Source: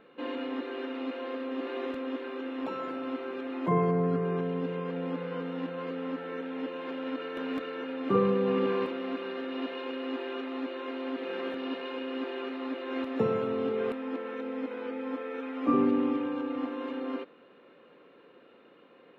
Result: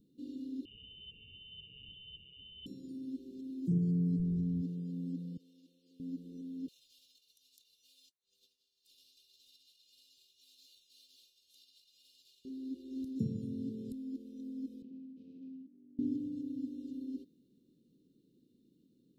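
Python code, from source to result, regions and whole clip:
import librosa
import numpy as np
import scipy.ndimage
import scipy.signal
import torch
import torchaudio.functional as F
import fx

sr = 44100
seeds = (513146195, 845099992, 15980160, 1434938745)

y = fx.chain(x, sr, fx.freq_invert(carrier_hz=3300),
    fx.high_shelf(hz=2200.0, db=11.5), at=(0.65, 2.66))
y = fx.chain(y, sr, fx.low_shelf(hz=220.0, db=7.5),
    fx.tube_stage(drive_db=23.0, bias=0.35), at=(4.19, 4.62))
y = fx.chain(y, sr, fx.highpass(hz=1100.0, slope=12),
    fx.high_shelf(hz=2300.0, db=-7.5),
    fx.env_flatten(amount_pct=70), at=(5.37, 6.0))
y = fx.chain(y, sr, fx.highpass(hz=1100.0, slope=24),
    fx.over_compress(threshold_db=-47.0, ratio=-0.5),
    fx.high_shelf(hz=2800.0, db=7.0), at=(6.68, 12.45))
y = fx.chain(y, sr, fx.lower_of_two(delay_ms=0.72),
    fx.over_compress(threshold_db=-40.0, ratio=-1.0),
    fx.cabinet(low_hz=260.0, low_slope=24, high_hz=2300.0, hz=(300.0, 450.0, 970.0), db=(-5, -7, 6)), at=(14.82, 15.99))
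y = scipy.signal.sosfilt(scipy.signal.cheby2(4, 70, [850.0, 2000.0], 'bandstop', fs=sr, output='sos'), y)
y = fx.peak_eq(y, sr, hz=490.0, db=-11.0, octaves=2.7)
y = y * librosa.db_to_amplitude(4.0)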